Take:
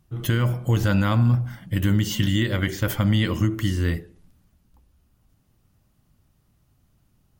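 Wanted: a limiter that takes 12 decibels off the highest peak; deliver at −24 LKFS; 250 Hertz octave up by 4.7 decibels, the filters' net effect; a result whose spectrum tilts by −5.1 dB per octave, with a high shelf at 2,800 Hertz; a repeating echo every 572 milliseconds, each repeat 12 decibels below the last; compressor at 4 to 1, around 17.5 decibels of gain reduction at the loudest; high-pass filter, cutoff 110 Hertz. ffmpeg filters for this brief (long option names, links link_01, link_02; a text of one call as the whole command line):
ffmpeg -i in.wav -af "highpass=110,equalizer=frequency=250:width_type=o:gain=6.5,highshelf=frequency=2800:gain=8.5,acompressor=threshold=-36dB:ratio=4,alimiter=level_in=8dB:limit=-24dB:level=0:latency=1,volume=-8dB,aecho=1:1:572|1144|1716:0.251|0.0628|0.0157,volume=17dB" out.wav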